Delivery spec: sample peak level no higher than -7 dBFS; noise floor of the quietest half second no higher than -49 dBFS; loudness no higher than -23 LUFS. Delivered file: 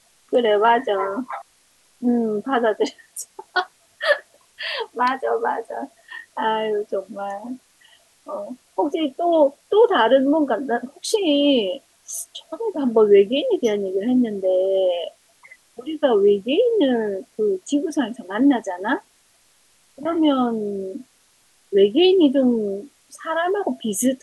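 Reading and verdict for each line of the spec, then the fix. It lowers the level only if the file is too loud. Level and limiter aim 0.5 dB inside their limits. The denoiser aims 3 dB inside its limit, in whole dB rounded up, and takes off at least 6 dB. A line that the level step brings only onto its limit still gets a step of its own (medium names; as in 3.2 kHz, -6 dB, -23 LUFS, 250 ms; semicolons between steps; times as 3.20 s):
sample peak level -5.0 dBFS: fail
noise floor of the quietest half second -59 dBFS: pass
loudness -20.5 LUFS: fail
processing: trim -3 dB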